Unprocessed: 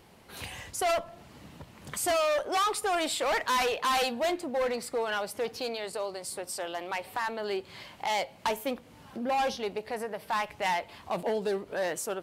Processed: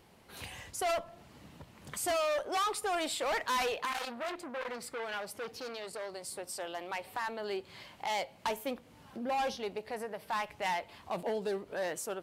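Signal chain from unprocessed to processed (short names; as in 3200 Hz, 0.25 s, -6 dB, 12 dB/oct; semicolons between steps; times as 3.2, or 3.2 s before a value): 3.85–6.12 core saturation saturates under 1800 Hz; gain -4.5 dB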